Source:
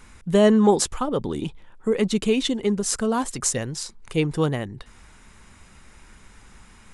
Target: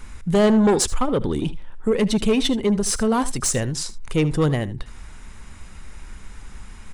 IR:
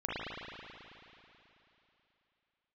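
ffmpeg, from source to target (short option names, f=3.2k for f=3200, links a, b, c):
-filter_complex "[0:a]lowshelf=f=69:g=11,asoftclip=type=tanh:threshold=-16dB,asettb=1/sr,asplit=3[a][b][c];[a]atrim=end=1.094[d];[b]atrim=start=1.09:end=3.49,asetpts=PTS-STARTPTS,afade=t=in:d=0.004:c=qsin,afade=t=out:st=2.396:d=0.004:c=qsin,bandreject=f=7k:w=10[e];[c]atrim=start=3.486[f];[d][e]acrossfade=d=0.004:c1=hsin:c2=qsin[g];[g][f]acrossfade=d=0.004:c1=qsin:c2=hsin,aecho=1:1:77:0.141,volume=4dB"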